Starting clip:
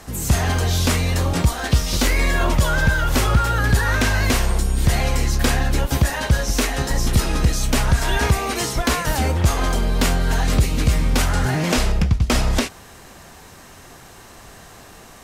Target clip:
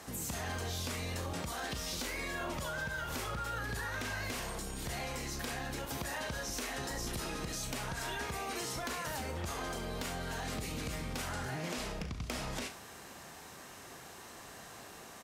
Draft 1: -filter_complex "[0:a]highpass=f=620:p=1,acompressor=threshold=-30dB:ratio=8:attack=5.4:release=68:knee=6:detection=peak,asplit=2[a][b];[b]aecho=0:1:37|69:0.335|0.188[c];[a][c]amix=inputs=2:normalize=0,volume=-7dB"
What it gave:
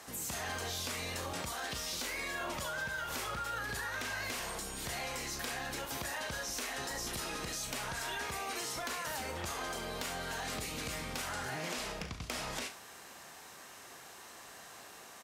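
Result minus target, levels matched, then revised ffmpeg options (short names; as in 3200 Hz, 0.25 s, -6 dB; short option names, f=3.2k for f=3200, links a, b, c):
250 Hz band -4.5 dB
-filter_complex "[0:a]highpass=f=190:p=1,acompressor=threshold=-30dB:ratio=8:attack=5.4:release=68:knee=6:detection=peak,asplit=2[a][b];[b]aecho=0:1:37|69:0.335|0.188[c];[a][c]amix=inputs=2:normalize=0,volume=-7dB"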